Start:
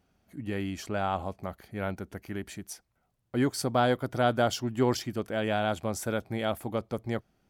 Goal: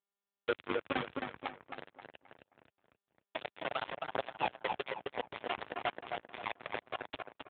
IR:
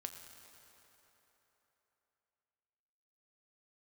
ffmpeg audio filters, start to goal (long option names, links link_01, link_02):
-filter_complex "[0:a]asetnsamples=nb_out_samples=441:pad=0,asendcmd='1.05 highpass f 440',highpass=110,afftfilt=real='re*gte(hypot(re,im),0.0112)':imag='im*gte(hypot(re,im),0.0112)':win_size=1024:overlap=0.75,highshelf=frequency=3000:gain=-3,alimiter=limit=-20.5dB:level=0:latency=1:release=58,acompressor=threshold=-36dB:ratio=10,acrusher=samples=30:mix=1:aa=0.000001:lfo=1:lforange=30:lforate=1.8,afreqshift=160,aphaser=in_gain=1:out_gain=1:delay=4.1:decay=0.71:speed=0.48:type=triangular,acrusher=bits=4:mix=0:aa=0.000001,asplit=2[link_01][link_02];[link_02]adelay=265,lowpass=frequency=2400:poles=1,volume=-3.5dB,asplit=2[link_03][link_04];[link_04]adelay=265,lowpass=frequency=2400:poles=1,volume=0.38,asplit=2[link_05][link_06];[link_06]adelay=265,lowpass=frequency=2400:poles=1,volume=0.38,asplit=2[link_07][link_08];[link_08]adelay=265,lowpass=frequency=2400:poles=1,volume=0.38,asplit=2[link_09][link_10];[link_10]adelay=265,lowpass=frequency=2400:poles=1,volume=0.38[link_11];[link_01][link_03][link_05][link_07][link_09][link_11]amix=inputs=6:normalize=0,volume=3dB" -ar 8000 -c:a libopencore_amrnb -b:a 7400